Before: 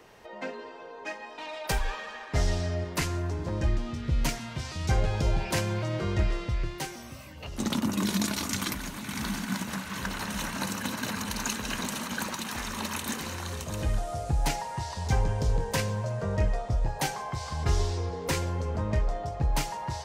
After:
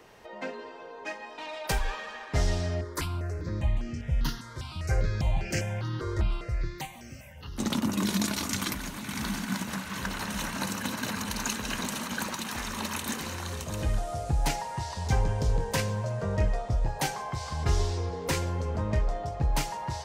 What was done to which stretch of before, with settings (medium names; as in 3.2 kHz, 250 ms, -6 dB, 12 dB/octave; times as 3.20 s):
2.81–7.58 s: stepped phaser 5 Hz 730–3700 Hz